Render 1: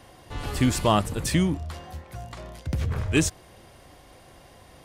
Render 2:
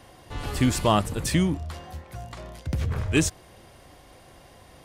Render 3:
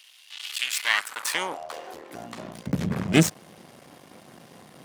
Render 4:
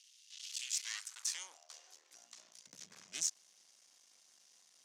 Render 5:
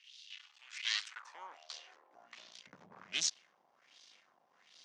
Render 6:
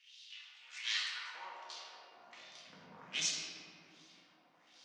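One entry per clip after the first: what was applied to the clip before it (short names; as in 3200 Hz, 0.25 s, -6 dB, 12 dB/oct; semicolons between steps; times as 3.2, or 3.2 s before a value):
nothing audible
half-wave rectifier; high-pass sweep 3000 Hz -> 180 Hz, 0.62–2.46; gain +5 dB
soft clip -16.5 dBFS, distortion -10 dB; band-pass 6200 Hz, Q 3.2; gain -1 dB
LFO low-pass sine 1.3 Hz 840–4100 Hz; gain +5.5 dB
reverb RT60 2.5 s, pre-delay 4 ms, DRR -5.5 dB; gain -5 dB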